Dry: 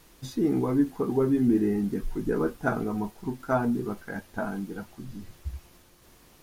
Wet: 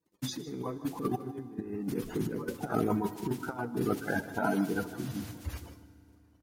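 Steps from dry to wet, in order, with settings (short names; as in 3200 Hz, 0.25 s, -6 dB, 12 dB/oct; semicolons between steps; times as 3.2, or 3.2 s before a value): bin magnitudes rounded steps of 30 dB; gate -52 dBFS, range -32 dB; HPF 110 Hz 12 dB/oct; negative-ratio compressor -32 dBFS, ratio -0.5; echo 0.155 s -15 dB; on a send at -15 dB: reverb RT60 2.7 s, pre-delay 3 ms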